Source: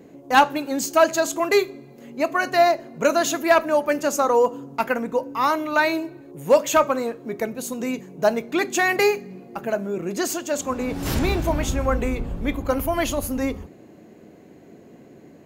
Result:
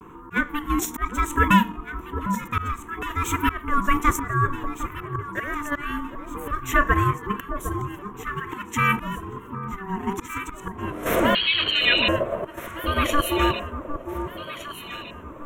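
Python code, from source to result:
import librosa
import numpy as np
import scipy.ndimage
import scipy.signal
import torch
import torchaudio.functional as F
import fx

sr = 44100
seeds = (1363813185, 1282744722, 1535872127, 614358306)

p1 = fx.level_steps(x, sr, step_db=13)
p2 = x + F.gain(torch.from_numpy(p1), 2.0).numpy()
p3 = fx.freq_invert(p2, sr, carrier_hz=3700, at=(11.34, 12.08))
p4 = p3 * np.sin(2.0 * np.pi * 600.0 * np.arange(len(p3)) / sr)
p5 = fx.auto_swell(p4, sr, attack_ms=487.0)
p6 = fx.low_shelf(p5, sr, hz=170.0, db=3.0)
p7 = fx.vibrato(p6, sr, rate_hz=0.98, depth_cents=93.0)
p8 = fx.peak_eq(p7, sr, hz=900.0, db=12.0, octaves=1.1)
p9 = fx.fixed_phaser(p8, sr, hz=2000.0, stages=4)
p10 = fx.echo_alternate(p9, sr, ms=756, hz=1100.0, feedback_pct=63, wet_db=-8)
y = F.gain(torch.from_numpy(p10), 1.5).numpy()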